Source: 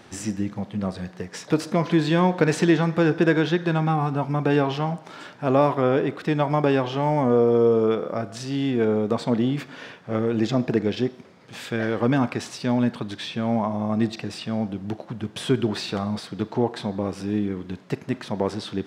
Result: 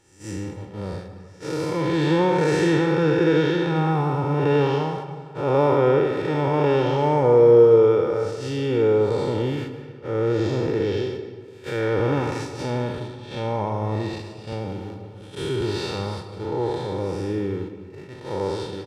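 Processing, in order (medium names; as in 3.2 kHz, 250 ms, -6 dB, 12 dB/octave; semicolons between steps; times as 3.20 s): spectral blur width 226 ms; comb 2.2 ms, depth 76%; in parallel at -12 dB: overload inside the chain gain 12 dB; on the sum: gate -31 dBFS, range -18 dB; on a send at -10 dB: reverberation RT60 1.7 s, pre-delay 116 ms; 14.52–15.61 s: on the sum: three bands compressed up and down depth 40%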